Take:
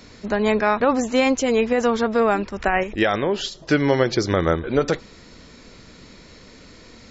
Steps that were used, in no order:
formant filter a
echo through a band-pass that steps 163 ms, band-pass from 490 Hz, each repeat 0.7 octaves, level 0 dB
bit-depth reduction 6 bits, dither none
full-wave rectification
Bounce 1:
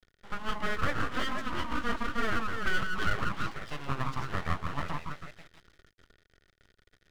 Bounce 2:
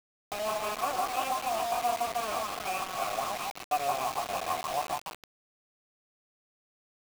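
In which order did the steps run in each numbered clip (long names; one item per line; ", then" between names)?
echo through a band-pass that steps, then bit-depth reduction, then formant filter, then full-wave rectification
echo through a band-pass that steps, then full-wave rectification, then formant filter, then bit-depth reduction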